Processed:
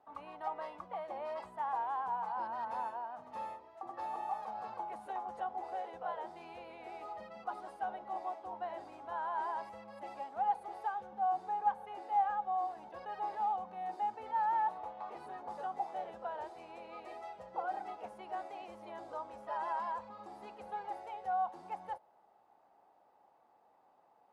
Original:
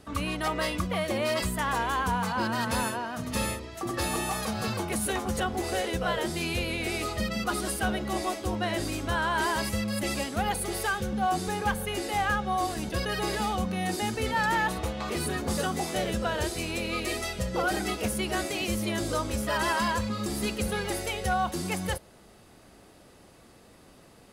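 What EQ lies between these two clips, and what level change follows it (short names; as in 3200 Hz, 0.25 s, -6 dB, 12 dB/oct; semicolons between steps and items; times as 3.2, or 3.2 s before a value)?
band-pass 830 Hz, Q 6.4; 0.0 dB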